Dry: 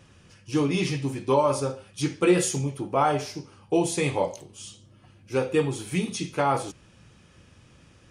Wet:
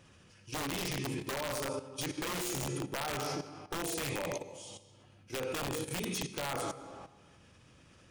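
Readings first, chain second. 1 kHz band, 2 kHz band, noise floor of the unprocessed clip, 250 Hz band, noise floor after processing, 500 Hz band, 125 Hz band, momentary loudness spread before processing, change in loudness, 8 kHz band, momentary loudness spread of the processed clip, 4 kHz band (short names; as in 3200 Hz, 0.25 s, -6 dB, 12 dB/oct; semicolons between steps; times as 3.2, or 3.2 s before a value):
-12.0 dB, -6.0 dB, -56 dBFS, -13.0 dB, -61 dBFS, -13.0 dB, -11.5 dB, 14 LU, -11.0 dB, -6.0 dB, 11 LU, -3.5 dB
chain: low shelf 190 Hz -3.5 dB; digital reverb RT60 1.3 s, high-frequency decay 0.8×, pre-delay 65 ms, DRR 8 dB; limiter -19 dBFS, peak gain reduction 9.5 dB; dynamic EQ 910 Hz, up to -4 dB, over -42 dBFS, Q 1.7; wrapped overs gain 22 dB; level quantiser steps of 12 dB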